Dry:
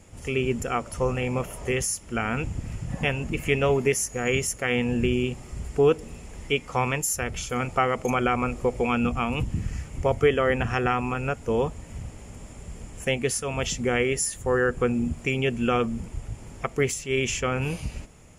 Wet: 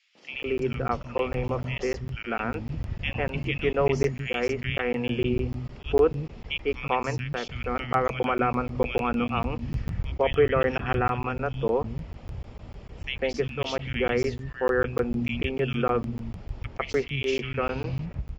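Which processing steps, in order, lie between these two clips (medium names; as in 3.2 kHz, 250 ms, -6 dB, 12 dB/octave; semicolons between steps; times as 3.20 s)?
steep low-pass 4.8 kHz 36 dB/octave; three bands offset in time highs, mids, lows 150/330 ms, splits 210/2100 Hz; crackling interface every 0.15 s, samples 512, zero, from 0.43 s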